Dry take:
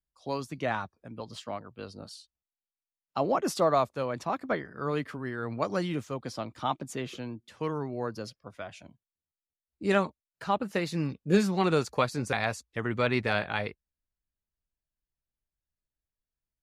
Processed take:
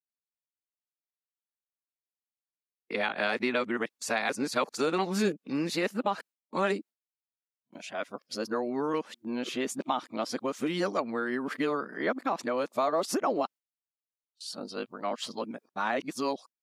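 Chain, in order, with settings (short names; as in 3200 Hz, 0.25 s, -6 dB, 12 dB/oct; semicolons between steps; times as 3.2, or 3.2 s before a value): whole clip reversed; gate with hold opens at -44 dBFS; Chebyshev high-pass 230 Hz, order 3; compressor 3:1, threshold -34 dBFS, peak gain reduction 11 dB; gain +7 dB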